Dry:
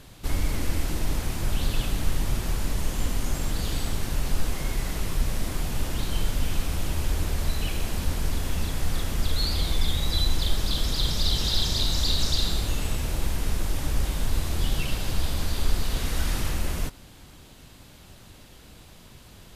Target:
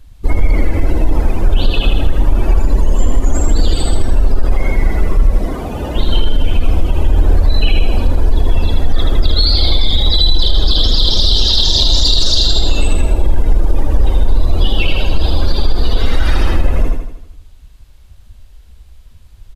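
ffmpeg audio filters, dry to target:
-filter_complex "[0:a]asettb=1/sr,asplit=3[s0][s1][s2];[s0]atrim=end=5.314[s3];[s1]atrim=start=5.31:end=5.96,asetpts=PTS-STARTPTS,afade=t=in:d=0.004:c=qsin,afade=t=out:st=0.646:d=0.004:c=qsin,highpass=88[s4];[s2]atrim=start=5.956[s5];[s3][s4]acrossfade=d=0.004:c1=hsin:c2=qsin[s6];[s6][s5]acrossfade=d=0.004:c1=qsin:c2=hsin,afftdn=nr=26:nf=-34,equalizer=f=140:w=0.94:g=-14.5,asplit=2[s7][s8];[s8]asoftclip=type=hard:threshold=0.0944,volume=0.299[s9];[s7][s9]amix=inputs=2:normalize=0,aecho=1:1:80|160|240|320|400|480|560:0.562|0.292|0.152|0.0791|0.0411|0.0214|0.0111,alimiter=level_in=7.5:limit=0.891:release=50:level=0:latency=1,volume=0.891"

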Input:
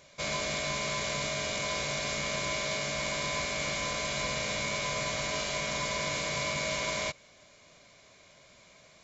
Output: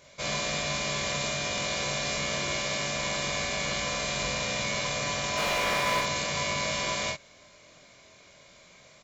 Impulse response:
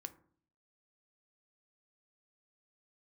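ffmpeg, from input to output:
-filter_complex "[0:a]asplit=3[s0][s1][s2];[s0]afade=t=out:st=5.36:d=0.02[s3];[s1]asplit=2[s4][s5];[s5]highpass=f=720:p=1,volume=50.1,asoftclip=type=tanh:threshold=0.1[s6];[s4][s6]amix=inputs=2:normalize=0,lowpass=f=1700:p=1,volume=0.501,afade=t=in:st=5.36:d=0.02,afade=t=out:st=6:d=0.02[s7];[s2]afade=t=in:st=6:d=0.02[s8];[s3][s7][s8]amix=inputs=3:normalize=0,asplit=2[s9][s10];[s10]aecho=0:1:22|47:0.668|0.708[s11];[s9][s11]amix=inputs=2:normalize=0"

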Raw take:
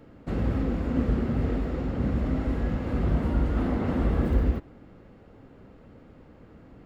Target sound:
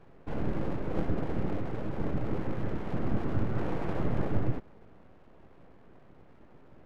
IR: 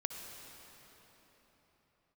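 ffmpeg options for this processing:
-af "bass=f=250:g=2,treble=f=4000:g=-15,aeval=exprs='abs(val(0))':c=same,volume=0.631"

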